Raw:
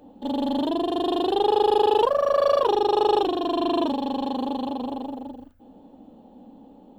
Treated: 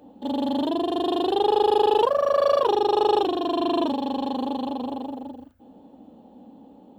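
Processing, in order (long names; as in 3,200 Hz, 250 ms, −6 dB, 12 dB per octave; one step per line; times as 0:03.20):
high-pass filter 62 Hz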